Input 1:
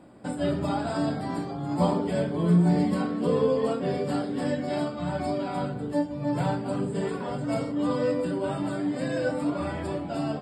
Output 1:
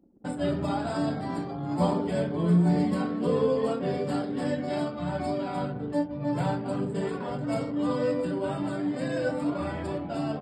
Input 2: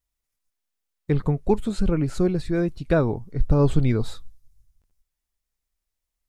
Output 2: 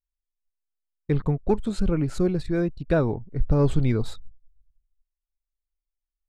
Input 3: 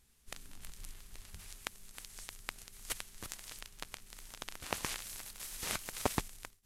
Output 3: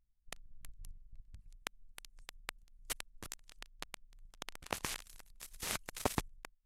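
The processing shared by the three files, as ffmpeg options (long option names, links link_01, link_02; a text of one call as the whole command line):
ffmpeg -i in.wav -af "acontrast=39,anlmdn=1.58,volume=-6.5dB" out.wav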